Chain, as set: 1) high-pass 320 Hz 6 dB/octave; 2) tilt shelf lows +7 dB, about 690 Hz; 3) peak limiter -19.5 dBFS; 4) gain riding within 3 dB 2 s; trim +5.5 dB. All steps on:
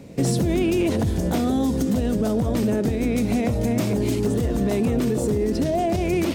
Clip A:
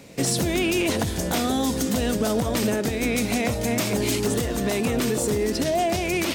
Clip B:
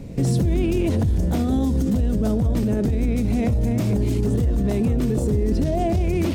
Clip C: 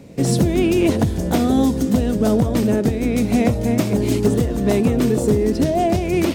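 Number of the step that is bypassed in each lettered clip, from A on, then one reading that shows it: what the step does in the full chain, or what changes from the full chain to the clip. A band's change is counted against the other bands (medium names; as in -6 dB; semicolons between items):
2, 125 Hz band -9.0 dB; 1, 125 Hz band +8.0 dB; 3, mean gain reduction 3.5 dB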